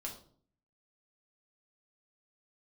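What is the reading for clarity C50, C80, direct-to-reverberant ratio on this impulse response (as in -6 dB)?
8.0 dB, 12.5 dB, -1.5 dB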